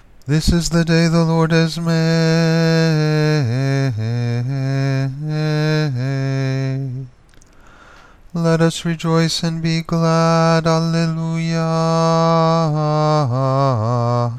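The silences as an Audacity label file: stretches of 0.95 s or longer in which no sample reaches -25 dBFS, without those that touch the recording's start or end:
7.040000	8.350000	silence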